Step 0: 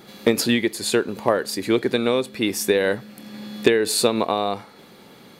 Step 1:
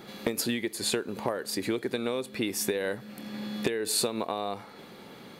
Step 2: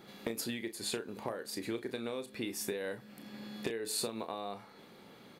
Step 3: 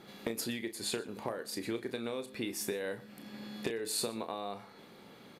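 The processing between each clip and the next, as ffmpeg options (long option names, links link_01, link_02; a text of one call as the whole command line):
ffmpeg -i in.wav -filter_complex "[0:a]bass=frequency=250:gain=-1,treble=frequency=4000:gain=-4,acrossover=split=6600[link_01][link_02];[link_01]acompressor=threshold=-27dB:ratio=6[link_03];[link_03][link_02]amix=inputs=2:normalize=0" out.wav
ffmpeg -i in.wav -filter_complex "[0:a]asplit=2[link_01][link_02];[link_02]adelay=35,volume=-10dB[link_03];[link_01][link_03]amix=inputs=2:normalize=0,volume=-8.5dB" out.wav
ffmpeg -i in.wav -af "aecho=1:1:120:0.0891,aresample=32000,aresample=44100,volume=1dB" out.wav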